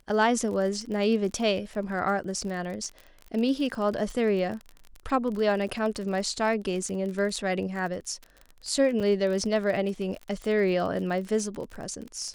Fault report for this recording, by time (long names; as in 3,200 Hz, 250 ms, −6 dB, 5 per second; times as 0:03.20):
surface crackle 35 per second −33 dBFS
0:09.00–0:09.01: drop-out 5.3 ms